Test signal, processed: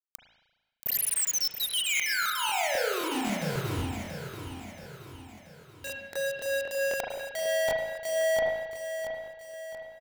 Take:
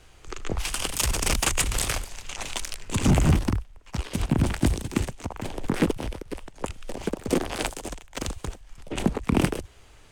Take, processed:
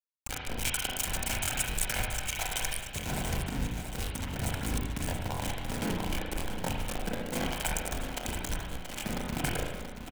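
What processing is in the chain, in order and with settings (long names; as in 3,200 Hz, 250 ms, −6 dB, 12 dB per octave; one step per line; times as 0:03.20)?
reverb reduction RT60 1.7 s
mains-hum notches 60/120/180/240/300 Hz
comb filter 1.3 ms, depth 52%
in parallel at −9 dB: soft clipping −19 dBFS
on the sum: parametric band 4,700 Hz −14 dB 0.39 octaves
reversed playback
downward compressor 20 to 1, threshold −35 dBFS
reversed playback
centre clipping without the shift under −36.5 dBFS
high-shelf EQ 2,100 Hz +7.5 dB
notch filter 1,200 Hz, Q 13
repeating echo 680 ms, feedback 49%, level −9 dB
spring reverb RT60 1.2 s, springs 34/38 ms, chirp 65 ms, DRR −2 dB
regular buffer underruns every 0.26 s, samples 1,024, repeat, from 0:00.65
level +3 dB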